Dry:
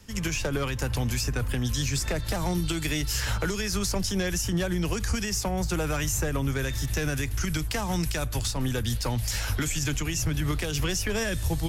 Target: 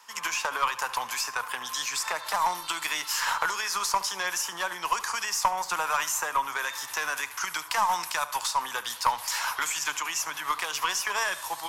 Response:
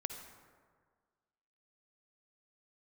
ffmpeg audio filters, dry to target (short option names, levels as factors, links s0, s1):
-filter_complex "[0:a]highpass=f=1000:t=q:w=6.3,aeval=exprs='0.282*(cos(1*acos(clip(val(0)/0.282,-1,1)))-cos(1*PI/2))+0.0224*(cos(2*acos(clip(val(0)/0.282,-1,1)))-cos(2*PI/2))+0.0251*(cos(3*acos(clip(val(0)/0.282,-1,1)))-cos(3*PI/2))':c=same,asplit=2[s0][s1];[1:a]atrim=start_sample=2205,asetrate=66150,aresample=44100,adelay=72[s2];[s1][s2]afir=irnorm=-1:irlink=0,volume=0.282[s3];[s0][s3]amix=inputs=2:normalize=0,volume=1.41"